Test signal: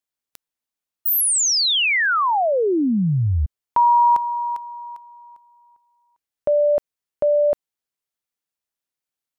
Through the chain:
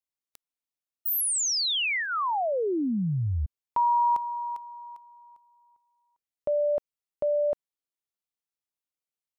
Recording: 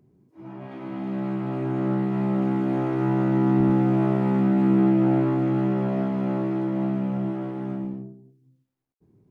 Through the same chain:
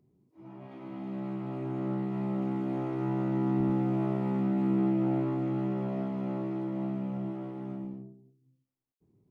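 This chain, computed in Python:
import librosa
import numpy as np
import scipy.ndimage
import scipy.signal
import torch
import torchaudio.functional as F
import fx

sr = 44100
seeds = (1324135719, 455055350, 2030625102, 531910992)

y = fx.peak_eq(x, sr, hz=1600.0, db=-6.5, octaves=0.27)
y = y * 10.0 ** (-8.0 / 20.0)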